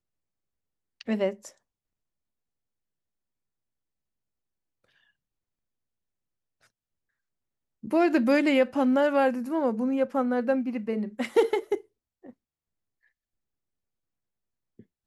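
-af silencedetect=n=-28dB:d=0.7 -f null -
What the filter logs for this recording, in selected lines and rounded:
silence_start: 0.00
silence_end: 1.01 | silence_duration: 1.01
silence_start: 1.30
silence_end: 7.93 | silence_duration: 6.63
silence_start: 11.75
silence_end: 15.06 | silence_duration: 3.31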